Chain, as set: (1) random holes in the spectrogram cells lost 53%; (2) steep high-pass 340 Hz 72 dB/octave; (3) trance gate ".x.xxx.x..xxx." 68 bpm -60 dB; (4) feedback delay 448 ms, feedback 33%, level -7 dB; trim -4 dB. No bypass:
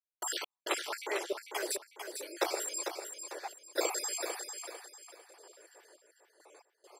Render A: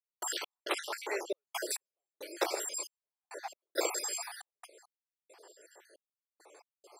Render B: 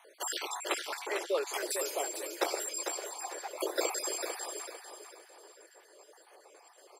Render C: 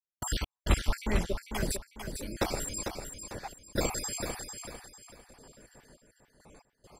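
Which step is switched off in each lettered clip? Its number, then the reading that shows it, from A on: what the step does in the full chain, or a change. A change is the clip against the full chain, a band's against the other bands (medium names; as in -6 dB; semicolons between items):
4, momentary loudness spread change -2 LU; 3, crest factor change -1.5 dB; 2, 250 Hz band +9.5 dB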